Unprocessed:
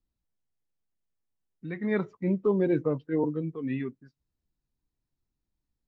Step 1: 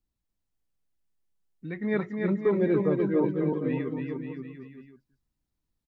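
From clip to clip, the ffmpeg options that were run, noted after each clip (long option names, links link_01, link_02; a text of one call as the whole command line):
ffmpeg -i in.wav -af "aecho=1:1:290|536.5|746|924.1|1076:0.631|0.398|0.251|0.158|0.1" out.wav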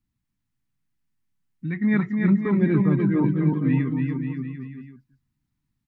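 ffmpeg -i in.wav -af "equalizer=frequency=125:width_type=o:width=1:gain=12,equalizer=frequency=250:width_type=o:width=1:gain=9,equalizer=frequency=500:width_type=o:width=1:gain=-12,equalizer=frequency=1000:width_type=o:width=1:gain=4,equalizer=frequency=2000:width_type=o:width=1:gain=6" out.wav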